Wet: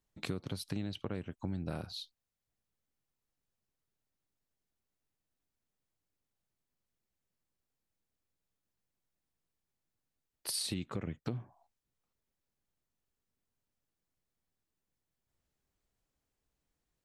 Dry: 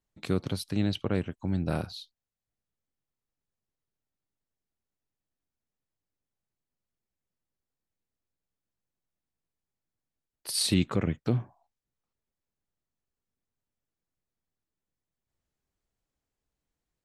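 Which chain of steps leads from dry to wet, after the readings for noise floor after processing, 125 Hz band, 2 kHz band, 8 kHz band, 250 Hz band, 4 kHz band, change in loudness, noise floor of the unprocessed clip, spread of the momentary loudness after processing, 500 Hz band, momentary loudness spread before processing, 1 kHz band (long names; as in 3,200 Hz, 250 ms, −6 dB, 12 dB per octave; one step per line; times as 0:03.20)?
below −85 dBFS, −10.0 dB, −8.0 dB, −7.0 dB, −10.5 dB, −7.5 dB, −10.0 dB, below −85 dBFS, 9 LU, −10.5 dB, 8 LU, −8.5 dB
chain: downward compressor 8 to 1, threshold −35 dBFS, peak gain reduction 16 dB
level +1 dB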